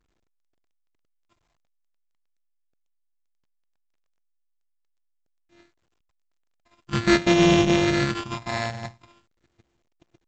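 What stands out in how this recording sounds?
a buzz of ramps at a fixed pitch in blocks of 128 samples; phasing stages 8, 0.43 Hz, lowest notch 370–1400 Hz; aliases and images of a low sample rate 6.1 kHz, jitter 0%; A-law

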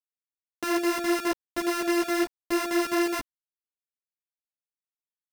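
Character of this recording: a buzz of ramps at a fixed pitch in blocks of 128 samples; chopped level 4.8 Hz, depth 60%, duty 70%; a quantiser's noise floor 6-bit, dither none; a shimmering, thickened sound

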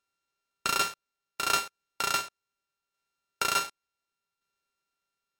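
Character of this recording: a buzz of ramps at a fixed pitch in blocks of 32 samples; tremolo saw down 0.68 Hz, depth 40%; aliases and images of a low sample rate 12 kHz, jitter 0%; MP3

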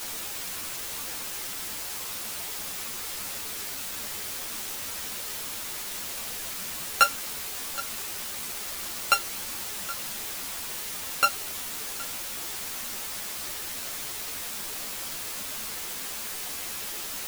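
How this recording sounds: a buzz of ramps at a fixed pitch in blocks of 32 samples; tremolo saw down 2.9 Hz, depth 90%; a quantiser's noise floor 8-bit, dither triangular; a shimmering, thickened sound

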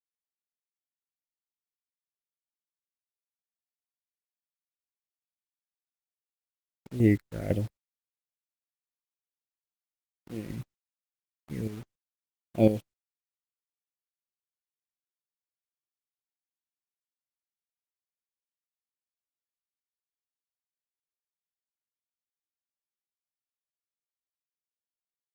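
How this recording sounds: phasing stages 6, 1.2 Hz, lowest notch 700–1800 Hz; chopped level 2 Hz, depth 65%, duty 35%; a quantiser's noise floor 8-bit, dither none; Opus

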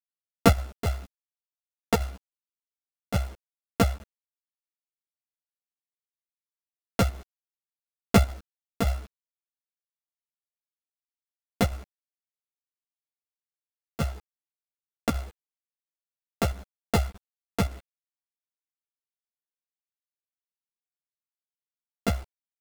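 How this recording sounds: a buzz of ramps at a fixed pitch in blocks of 64 samples; chopped level 3.5 Hz, depth 60%, duty 80%; a quantiser's noise floor 8-bit, dither none; a shimmering, thickened sound

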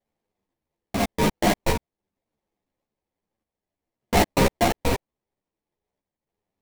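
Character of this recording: random-step tremolo; aliases and images of a low sample rate 1.4 kHz, jitter 20%; a shimmering, thickened sound

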